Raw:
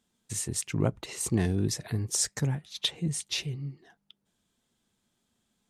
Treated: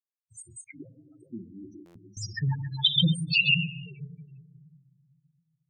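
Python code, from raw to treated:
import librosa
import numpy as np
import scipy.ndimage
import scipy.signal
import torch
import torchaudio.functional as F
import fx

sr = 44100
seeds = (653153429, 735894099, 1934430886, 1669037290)

p1 = fx.bin_expand(x, sr, power=3.0)
p2 = fx.leveller(p1, sr, passes=3, at=(2.78, 3.67))
p3 = fx.level_steps(p2, sr, step_db=21)
p4 = p2 + (p3 * 10.0 ** (1.0 / 20.0))
p5 = fx.high_shelf(p4, sr, hz=3900.0, db=-7.0)
p6 = fx.echo_stepped(p5, sr, ms=134, hz=2900.0, octaves=-1.4, feedback_pct=70, wet_db=0.0)
p7 = fx.room_shoebox(p6, sr, seeds[0], volume_m3=1600.0, walls='mixed', distance_m=1.0)
p8 = fx.spec_topn(p7, sr, count=8)
p9 = fx.band_shelf(p8, sr, hz=2200.0, db=11.0, octaves=2.7)
p10 = fx.vowel_filter(p9, sr, vowel='i', at=(0.64, 2.17))
y = fx.buffer_glitch(p10, sr, at_s=(1.85,), block=512, repeats=8)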